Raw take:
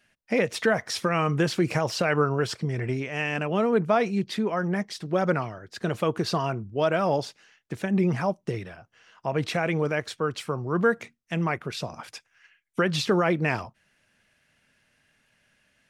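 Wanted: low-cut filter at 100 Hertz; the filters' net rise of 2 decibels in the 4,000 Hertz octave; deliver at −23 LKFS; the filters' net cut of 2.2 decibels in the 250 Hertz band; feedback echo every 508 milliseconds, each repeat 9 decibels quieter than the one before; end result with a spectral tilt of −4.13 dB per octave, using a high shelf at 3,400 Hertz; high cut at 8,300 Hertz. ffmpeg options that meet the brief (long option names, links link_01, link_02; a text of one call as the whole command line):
ffmpeg -i in.wav -af "highpass=100,lowpass=8300,equalizer=frequency=250:width_type=o:gain=-3,highshelf=frequency=3400:gain=-6,equalizer=frequency=4000:width_type=o:gain=7,aecho=1:1:508|1016|1524|2032:0.355|0.124|0.0435|0.0152,volume=4dB" out.wav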